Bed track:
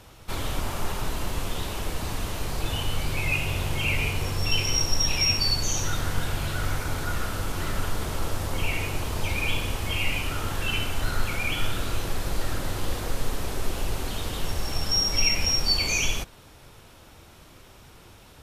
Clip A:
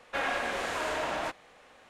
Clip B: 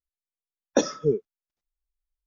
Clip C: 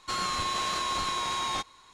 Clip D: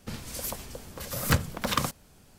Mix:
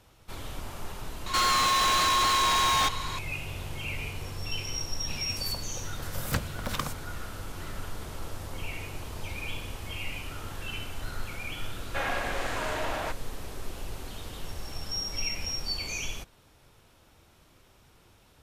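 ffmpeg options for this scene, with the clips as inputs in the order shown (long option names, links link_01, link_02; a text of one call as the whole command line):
ffmpeg -i bed.wav -i cue0.wav -i cue1.wav -i cue2.wav -i cue3.wav -filter_complex "[0:a]volume=-9.5dB[link_01];[3:a]asplit=2[link_02][link_03];[link_03]highpass=frequency=720:poles=1,volume=28dB,asoftclip=type=tanh:threshold=-17.5dB[link_04];[link_02][link_04]amix=inputs=2:normalize=0,lowpass=frequency=5900:poles=1,volume=-6dB,atrim=end=1.93,asetpts=PTS-STARTPTS,volume=-0.5dB,afade=type=in:duration=0.004:curve=hsin,afade=type=out:start_time=1.926:duration=0.004:curve=hsin,adelay=1260[link_05];[4:a]atrim=end=2.38,asetpts=PTS-STARTPTS,volume=-6dB,afade=type=in:duration=0.004:curve=hsin,afade=type=out:start_time=2.376:duration=0.004:curve=hsin,adelay=5020[link_06];[1:a]atrim=end=1.89,asetpts=PTS-STARTPTS,volume=-0.5dB,afade=type=in:duration=0.004:curve=hsin,afade=type=out:start_time=1.886:duration=0.004:curve=hsin,adelay=11810[link_07];[link_01][link_05][link_06][link_07]amix=inputs=4:normalize=0" out.wav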